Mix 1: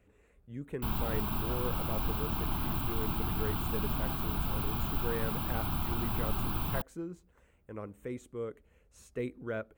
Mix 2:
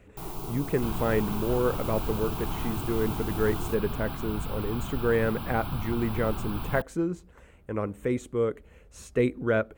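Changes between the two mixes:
speech +12.0 dB; first sound: unmuted; master: add treble shelf 11 kHz -6.5 dB

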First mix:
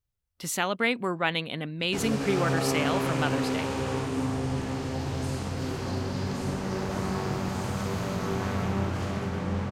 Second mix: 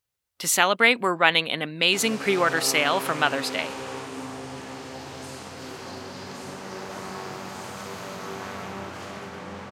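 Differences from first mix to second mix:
speech +9.5 dB; master: add high-pass 590 Hz 6 dB/octave

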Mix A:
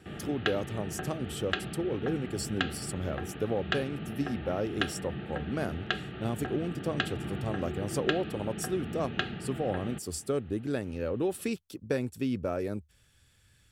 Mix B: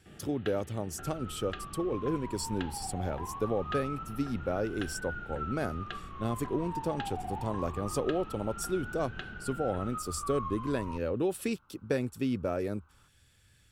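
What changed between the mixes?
first sound -11.5 dB; second sound: unmuted

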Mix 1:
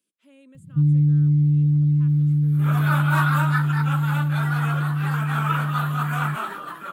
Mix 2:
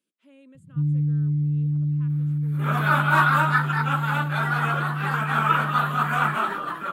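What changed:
first sound -5.5 dB; second sound +5.0 dB; master: add treble shelf 5.8 kHz -10 dB

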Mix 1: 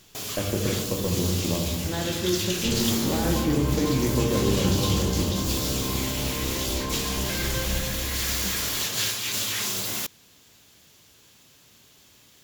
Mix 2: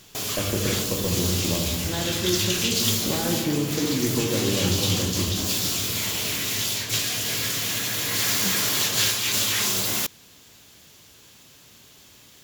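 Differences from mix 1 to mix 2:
first sound +4.5 dB; second sound: muted

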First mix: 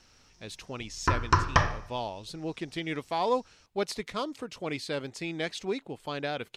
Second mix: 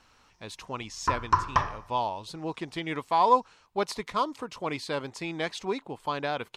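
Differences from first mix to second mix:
background -8.0 dB; master: add peaking EQ 1 kHz +11 dB 0.65 oct

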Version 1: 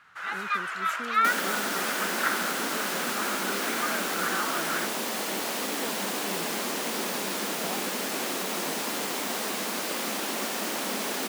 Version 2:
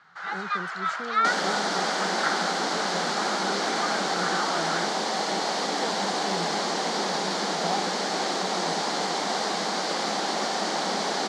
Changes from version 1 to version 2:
speech +4.0 dB; second sound +3.5 dB; master: add cabinet simulation 160–6700 Hz, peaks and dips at 170 Hz +8 dB, 250 Hz -6 dB, 780 Hz +8 dB, 2.6 kHz -9 dB, 4.4 kHz +5 dB

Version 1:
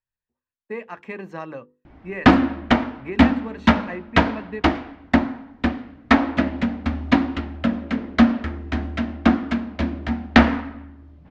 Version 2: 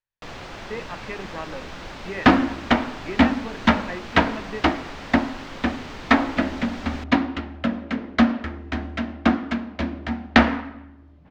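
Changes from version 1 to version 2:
first sound: unmuted; master: add bass shelf 280 Hz -5 dB

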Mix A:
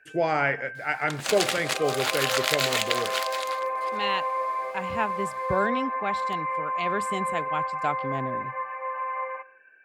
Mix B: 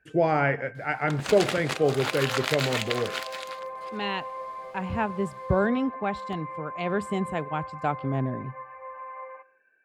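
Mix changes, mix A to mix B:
first sound -9.0 dB; master: add tilt EQ -2.5 dB/octave

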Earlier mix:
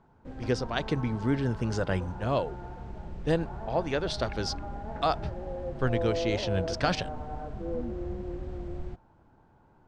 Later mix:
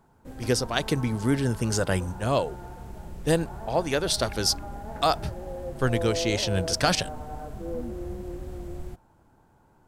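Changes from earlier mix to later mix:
speech +3.0 dB; master: remove distance through air 160 m

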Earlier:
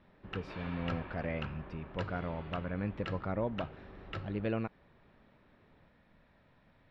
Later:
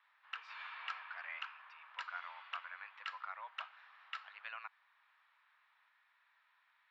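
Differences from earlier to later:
speech: add distance through air 99 m; master: add steep high-pass 1 kHz 36 dB/octave

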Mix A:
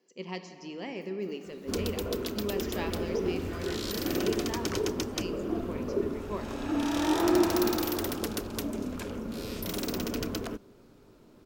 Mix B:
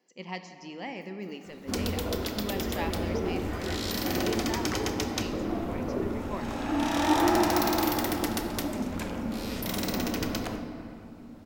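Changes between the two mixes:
second sound: send on; master: add graphic EQ with 31 bands 400 Hz -8 dB, 800 Hz +7 dB, 2 kHz +5 dB

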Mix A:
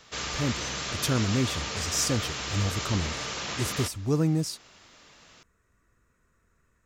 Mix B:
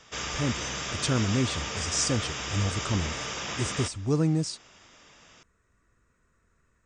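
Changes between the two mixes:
background: add Butterworth band-stop 4.2 kHz, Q 6.2; master: add brick-wall FIR low-pass 9.3 kHz

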